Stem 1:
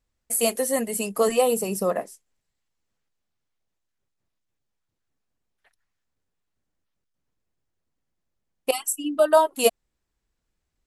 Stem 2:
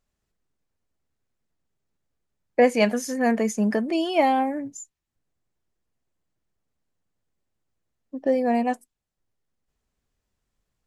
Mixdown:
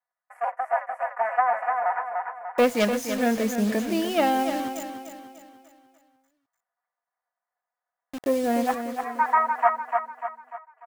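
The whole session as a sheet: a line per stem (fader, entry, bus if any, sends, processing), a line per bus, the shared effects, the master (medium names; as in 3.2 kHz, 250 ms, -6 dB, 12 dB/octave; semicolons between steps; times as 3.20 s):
-3.5 dB, 0.00 s, no send, echo send -4 dB, cycle switcher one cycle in 2, inverted; elliptic band-pass 640–1900 Hz, stop band 40 dB; comb 4.1 ms, depth 99%
-2.0 dB, 0.00 s, no send, echo send -8.5 dB, self-modulated delay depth 0.16 ms; bit crusher 6-bit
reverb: none
echo: feedback delay 296 ms, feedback 45%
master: none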